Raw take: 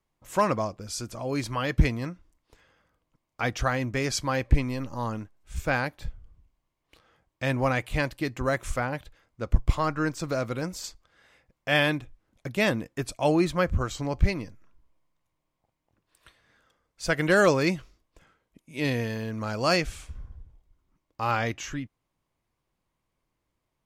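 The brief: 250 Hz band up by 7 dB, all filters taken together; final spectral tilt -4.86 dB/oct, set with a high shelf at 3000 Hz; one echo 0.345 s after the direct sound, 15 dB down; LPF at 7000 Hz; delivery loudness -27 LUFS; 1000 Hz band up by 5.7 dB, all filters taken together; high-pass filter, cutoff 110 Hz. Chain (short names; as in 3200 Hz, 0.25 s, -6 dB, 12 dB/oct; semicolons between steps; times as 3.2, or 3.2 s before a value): HPF 110 Hz; LPF 7000 Hz; bell 250 Hz +9 dB; bell 1000 Hz +5.5 dB; high shelf 3000 Hz +9 dB; echo 0.345 s -15 dB; gain -3.5 dB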